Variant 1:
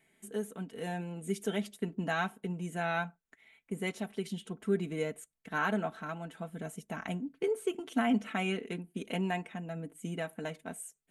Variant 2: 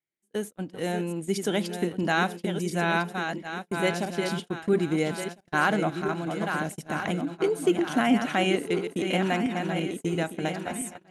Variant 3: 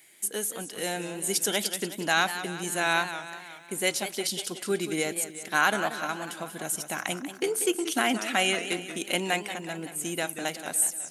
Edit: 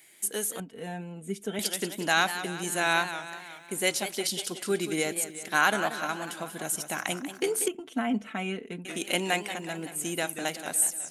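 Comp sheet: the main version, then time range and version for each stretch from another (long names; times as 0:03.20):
3
0:00.60–0:01.59: punch in from 1
0:07.68–0:08.85: punch in from 1
not used: 2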